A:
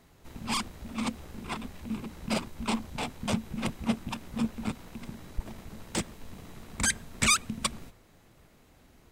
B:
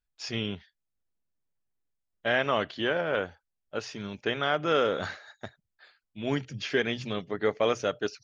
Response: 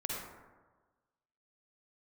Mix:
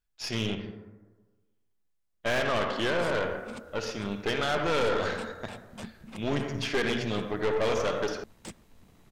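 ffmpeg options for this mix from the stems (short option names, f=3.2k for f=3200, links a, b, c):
-filter_complex "[0:a]adelay=2500,volume=-9.5dB[a];[1:a]volume=1.5dB,asplit=2[b][c];[c]volume=-4dB[d];[2:a]atrim=start_sample=2205[e];[d][e]afir=irnorm=-1:irlink=0[f];[a][b][f]amix=inputs=3:normalize=0,aeval=exprs='(tanh(14.1*val(0)+0.6)-tanh(0.6))/14.1':c=same"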